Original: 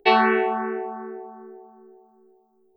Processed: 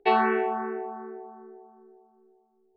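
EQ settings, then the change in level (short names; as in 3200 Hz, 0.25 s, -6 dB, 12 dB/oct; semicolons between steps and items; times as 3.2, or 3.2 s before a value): LPF 1000 Hz 6 dB/oct; low shelf 460 Hz -6.5 dB; 0.0 dB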